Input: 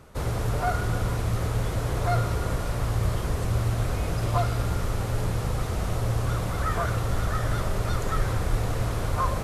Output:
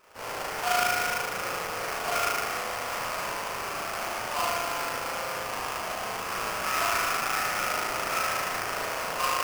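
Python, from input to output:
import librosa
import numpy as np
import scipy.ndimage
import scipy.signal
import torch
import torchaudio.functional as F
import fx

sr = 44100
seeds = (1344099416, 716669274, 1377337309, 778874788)

y = scipy.signal.sosfilt(scipy.signal.butter(2, 870.0, 'highpass', fs=sr, output='sos'), x)
y = fx.rev_spring(y, sr, rt60_s=2.3, pass_ms=(36,), chirp_ms=65, drr_db=-10.0)
y = fx.sample_hold(y, sr, seeds[0], rate_hz=3800.0, jitter_pct=20)
y = y * 10.0 ** (-3.5 / 20.0)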